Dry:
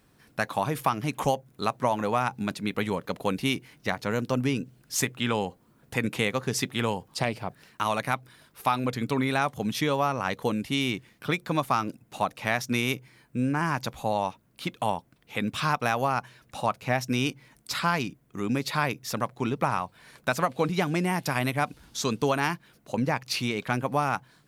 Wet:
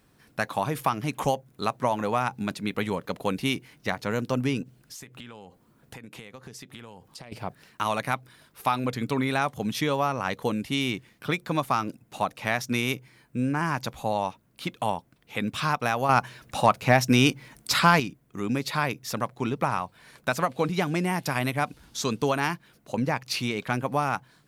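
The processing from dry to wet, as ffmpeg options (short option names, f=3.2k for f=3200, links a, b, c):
-filter_complex "[0:a]asettb=1/sr,asplit=3[a][b][c];[a]atrim=end=4.624[d];[b]atrim=start=4.62:end=7.32,asetpts=PTS-STARTPTS,afade=t=in:d=0.004:c=qsin,afade=t=out:st=2.696:d=0.004:c=qsin,acompressor=threshold=-39dB:ratio=16:attack=3.2:release=140:knee=1:detection=peak[e];[c]atrim=start=7.316[f];[d][e]acrossfade=d=0.004:c1=hsin:c2=qsin[g];[g][f]acrossfade=d=0.004:c1=qsin:c2=hsin,asettb=1/sr,asplit=3[h][i][j];[h]atrim=end=16.094[k];[i]atrim=start=16.09:end=18,asetpts=PTS-STARTPTS,afade=t=in:d=0.004:c=qsin,afade=t=out:st=1.906:d=0.004:c=qsin,acontrast=89[l];[j]atrim=start=17.996[m];[k][l]acrossfade=d=0.004:c1=hsin:c2=qsin[n];[n][m]acrossfade=d=0.004:c1=qsin:c2=hsin"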